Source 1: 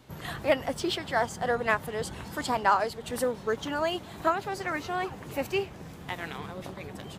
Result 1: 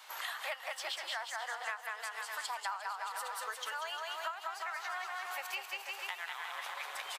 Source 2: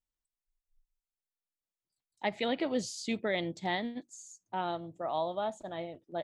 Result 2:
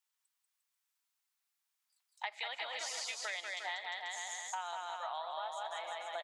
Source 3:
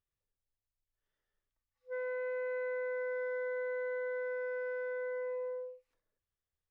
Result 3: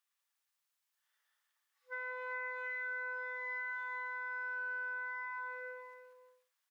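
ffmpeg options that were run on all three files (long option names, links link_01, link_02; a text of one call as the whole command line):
ffmpeg -i in.wav -af "highpass=frequency=870:width=0.5412,highpass=frequency=870:width=1.3066,aecho=1:1:190|351.5|488.8|605.5|704.6:0.631|0.398|0.251|0.158|0.1,acompressor=threshold=-46dB:ratio=6,volume=8dB" out.wav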